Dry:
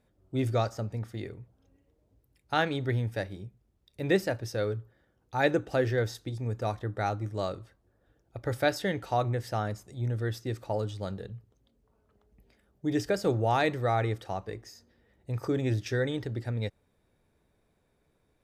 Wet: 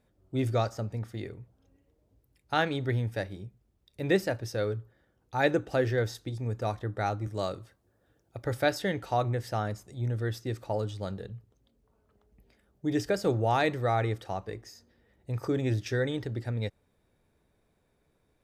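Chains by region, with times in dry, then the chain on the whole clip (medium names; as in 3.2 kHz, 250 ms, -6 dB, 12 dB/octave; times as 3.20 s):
7.27–8.45 s: high-pass 68 Hz + treble shelf 5.1 kHz +5.5 dB
whole clip: none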